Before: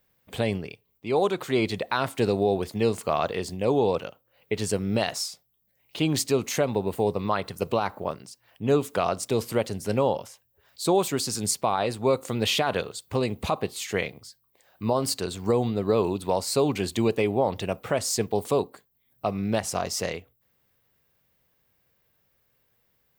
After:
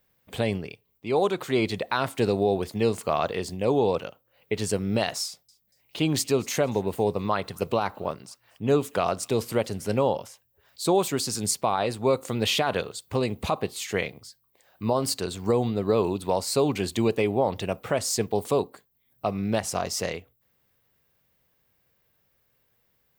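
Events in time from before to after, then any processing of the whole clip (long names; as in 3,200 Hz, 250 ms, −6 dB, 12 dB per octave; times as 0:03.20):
0:05.25–0:09.89: delay with a high-pass on its return 235 ms, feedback 34%, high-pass 1,700 Hz, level −23 dB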